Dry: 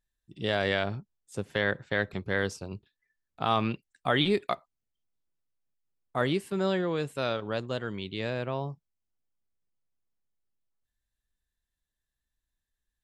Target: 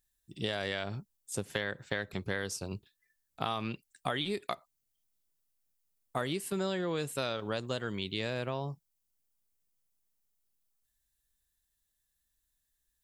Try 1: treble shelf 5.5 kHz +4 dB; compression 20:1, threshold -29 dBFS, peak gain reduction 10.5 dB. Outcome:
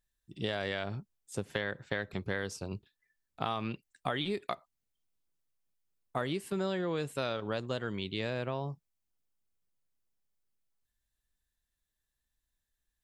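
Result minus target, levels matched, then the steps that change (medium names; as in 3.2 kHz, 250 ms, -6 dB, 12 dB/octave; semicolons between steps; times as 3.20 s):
8 kHz band -6.5 dB
change: treble shelf 5.5 kHz +15 dB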